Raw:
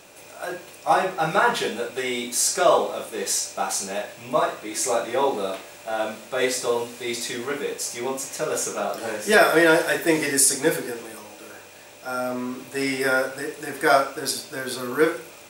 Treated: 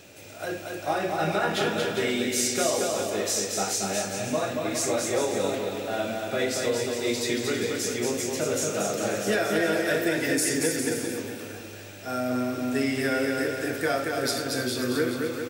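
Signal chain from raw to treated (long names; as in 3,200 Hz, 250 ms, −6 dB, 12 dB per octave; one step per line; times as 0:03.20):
graphic EQ with 15 bands 100 Hz +11 dB, 250 Hz +4 dB, 1,000 Hz −10 dB, 10,000 Hz −6 dB
downward compressor, threshold −23 dBFS, peak gain reduction 10.5 dB
bouncing-ball delay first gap 230 ms, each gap 0.75×, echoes 5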